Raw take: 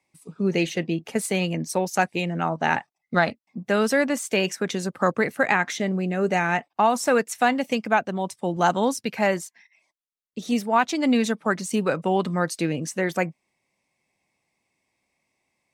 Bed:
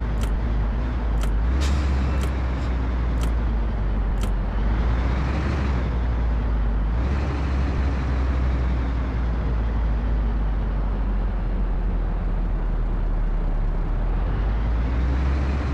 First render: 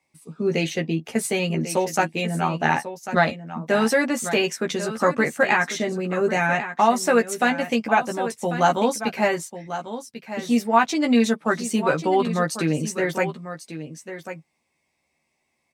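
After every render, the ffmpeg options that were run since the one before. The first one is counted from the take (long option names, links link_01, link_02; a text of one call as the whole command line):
ffmpeg -i in.wav -filter_complex "[0:a]asplit=2[link_01][link_02];[link_02]adelay=13,volume=-3.5dB[link_03];[link_01][link_03]amix=inputs=2:normalize=0,aecho=1:1:1094:0.266" out.wav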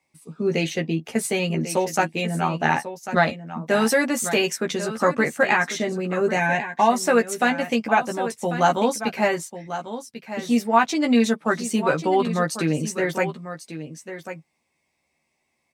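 ffmpeg -i in.wav -filter_complex "[0:a]asettb=1/sr,asplit=3[link_01][link_02][link_03];[link_01]atrim=end=3.714[link_04];[link_02]atrim=start=3.71:end=4.58,asetpts=PTS-STARTPTS,afade=type=in:duration=0.004:curve=qsin,afade=type=out:start_time=0.866:duration=0.004:curve=qsin,highshelf=frequency=7400:gain=7[link_05];[link_03]atrim=start=4.576[link_06];[link_04][link_05]acrossfade=duration=0.004:curve1=hsin:curve2=qsin[link_07];[link_07][link_06]acrossfade=duration=0.004:curve1=qsin:curve2=hsin,asettb=1/sr,asplit=3[link_08][link_09][link_10];[link_08]atrim=end=6.394[link_11];[link_09]atrim=start=6.39:end=6.9,asetpts=PTS-STARTPTS,afade=type=in:duration=0.004:curve=qsin,afade=type=out:start_time=0.506:duration=0.004:curve=qsin,asuperstop=centerf=1300:order=12:qfactor=5.4[link_12];[link_10]atrim=start=6.896[link_13];[link_11][link_12]acrossfade=duration=0.004:curve1=hsin:curve2=qsin[link_14];[link_14][link_13]acrossfade=duration=0.004:curve1=qsin:curve2=hsin" out.wav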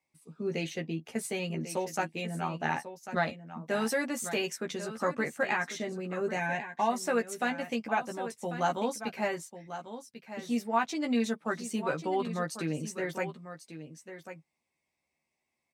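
ffmpeg -i in.wav -af "volume=-10.5dB" out.wav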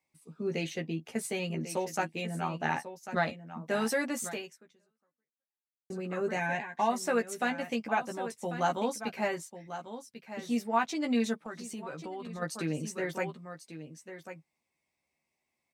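ffmpeg -i in.wav -filter_complex "[0:a]asplit=3[link_01][link_02][link_03];[link_01]afade=type=out:start_time=11.4:duration=0.02[link_04];[link_02]acompressor=threshold=-38dB:ratio=4:attack=3.2:release=140:knee=1:detection=peak,afade=type=in:start_time=11.4:duration=0.02,afade=type=out:start_time=12.41:duration=0.02[link_05];[link_03]afade=type=in:start_time=12.41:duration=0.02[link_06];[link_04][link_05][link_06]amix=inputs=3:normalize=0,asplit=2[link_07][link_08];[link_07]atrim=end=5.9,asetpts=PTS-STARTPTS,afade=type=out:start_time=4.25:duration=1.65:curve=exp[link_09];[link_08]atrim=start=5.9,asetpts=PTS-STARTPTS,afade=type=in:duration=0.004:curve=hsin[link_10];[link_09][link_10]concat=n=2:v=0:a=1" out.wav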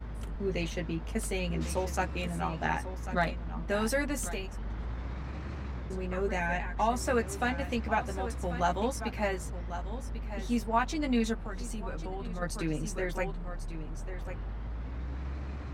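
ffmpeg -i in.wav -i bed.wav -filter_complex "[1:a]volume=-15.5dB[link_01];[0:a][link_01]amix=inputs=2:normalize=0" out.wav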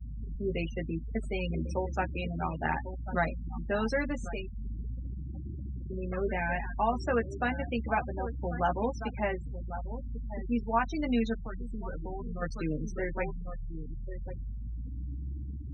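ffmpeg -i in.wav -af "afftfilt=real='re*gte(hypot(re,im),0.0251)':imag='im*gte(hypot(re,im),0.0251)':win_size=1024:overlap=0.75,lowpass=frequency=5500:width=0.5412,lowpass=frequency=5500:width=1.3066" out.wav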